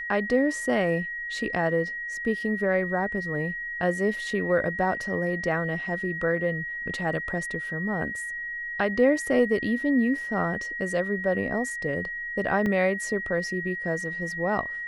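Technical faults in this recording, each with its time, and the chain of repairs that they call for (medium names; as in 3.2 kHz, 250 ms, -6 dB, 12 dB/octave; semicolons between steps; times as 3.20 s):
whine 1.9 kHz -31 dBFS
12.66 s: dropout 3.5 ms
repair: band-stop 1.9 kHz, Q 30; interpolate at 12.66 s, 3.5 ms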